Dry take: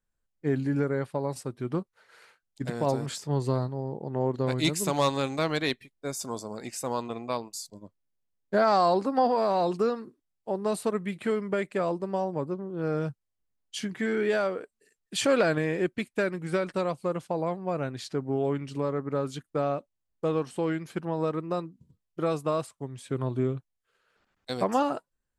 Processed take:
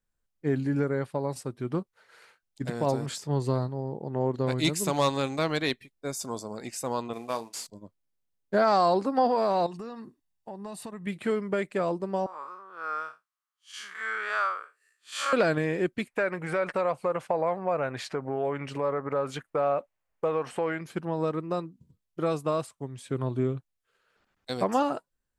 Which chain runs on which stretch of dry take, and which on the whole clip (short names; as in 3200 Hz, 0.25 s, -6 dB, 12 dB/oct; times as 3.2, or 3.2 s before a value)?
7.13–7.67 CVSD 64 kbps + HPF 240 Hz 6 dB/oct + doubler 35 ms -13 dB
9.66–11.07 comb 1.1 ms, depth 45% + compressor 4:1, threshold -37 dBFS
12.26–15.33 time blur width 0.122 s + resonant high-pass 1200 Hz, resonance Q 5.9
16.07–20.81 compressor 4:1, threshold -31 dBFS + band shelf 1100 Hz +11 dB 2.8 oct
whole clip: dry